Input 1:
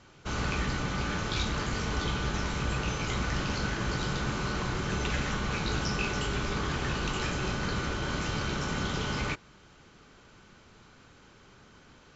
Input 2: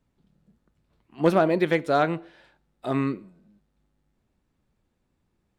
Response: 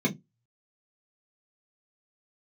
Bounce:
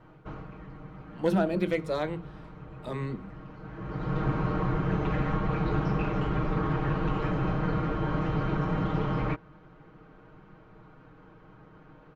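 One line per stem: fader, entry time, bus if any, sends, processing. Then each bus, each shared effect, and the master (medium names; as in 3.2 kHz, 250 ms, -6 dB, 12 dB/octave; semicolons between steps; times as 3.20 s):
+2.0 dB, 0.00 s, no send, low-pass 1.2 kHz 12 dB/octave; comb 6.4 ms, depth 98%; auto duck -17 dB, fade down 0.35 s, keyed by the second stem
-4.5 dB, 0.00 s, send -21 dB, Shepard-style phaser falling 1.1 Hz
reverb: on, RT60 0.15 s, pre-delay 3 ms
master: none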